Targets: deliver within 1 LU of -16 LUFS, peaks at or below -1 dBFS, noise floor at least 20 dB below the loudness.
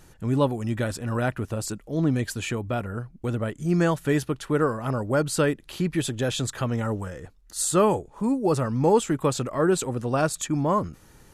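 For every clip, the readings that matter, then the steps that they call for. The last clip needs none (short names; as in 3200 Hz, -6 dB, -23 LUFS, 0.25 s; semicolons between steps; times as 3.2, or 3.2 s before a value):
loudness -25.5 LUFS; peak -8.0 dBFS; loudness target -16.0 LUFS
-> gain +9.5 dB; limiter -1 dBFS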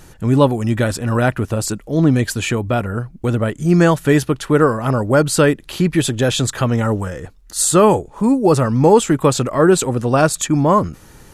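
loudness -16.0 LUFS; peak -1.0 dBFS; noise floor -44 dBFS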